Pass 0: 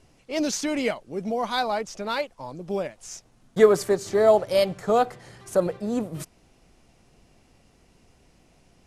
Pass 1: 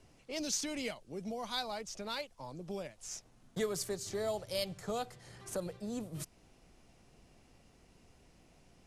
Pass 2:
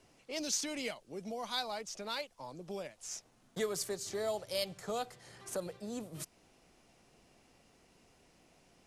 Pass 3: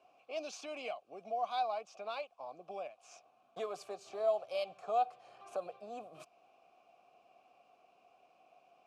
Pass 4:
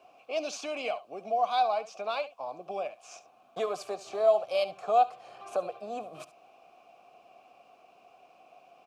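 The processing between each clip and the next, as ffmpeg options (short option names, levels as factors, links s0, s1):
-filter_complex "[0:a]acrossover=split=130|3000[s0][s1][s2];[s1]acompressor=threshold=0.00794:ratio=2[s3];[s0][s3][s2]amix=inputs=3:normalize=0,volume=0.596"
-af "lowshelf=f=150:g=-11.5,volume=1.12"
-filter_complex "[0:a]asplit=3[s0][s1][s2];[s0]bandpass=f=730:t=q:w=8,volume=1[s3];[s1]bandpass=f=1090:t=q:w=8,volume=0.501[s4];[s2]bandpass=f=2440:t=q:w=8,volume=0.355[s5];[s3][s4][s5]amix=inputs=3:normalize=0,volume=3.35"
-af "aecho=1:1:71:0.158,volume=2.66"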